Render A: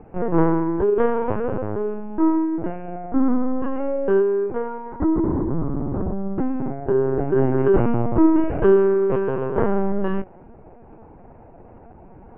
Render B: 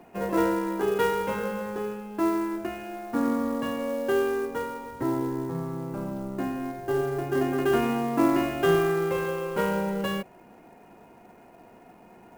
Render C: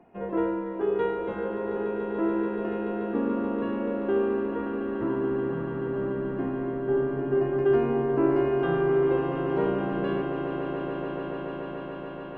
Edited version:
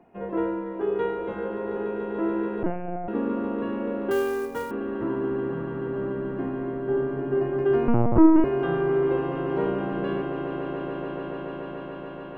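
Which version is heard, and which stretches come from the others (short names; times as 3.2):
C
2.63–3.08 from A
4.11–4.71 from B
7.88–8.44 from A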